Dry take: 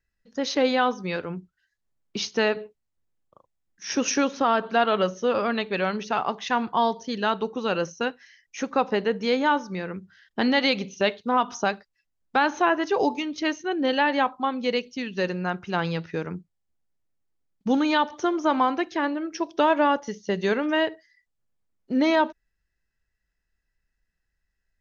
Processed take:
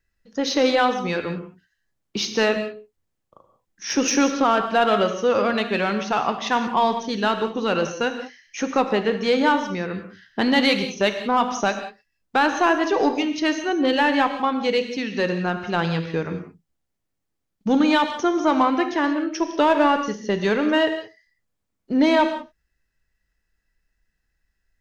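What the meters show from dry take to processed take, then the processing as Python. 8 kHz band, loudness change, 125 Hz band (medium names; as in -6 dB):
no reading, +3.5 dB, +4.0 dB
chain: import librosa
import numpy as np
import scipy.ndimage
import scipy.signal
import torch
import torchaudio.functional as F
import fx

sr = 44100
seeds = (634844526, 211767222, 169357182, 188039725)

p1 = 10.0 ** (-22.0 / 20.0) * np.tanh(x / 10.0 ** (-22.0 / 20.0))
p2 = x + F.gain(torch.from_numpy(p1), -4.0).numpy()
y = fx.rev_gated(p2, sr, seeds[0], gate_ms=210, shape='flat', drr_db=7.0)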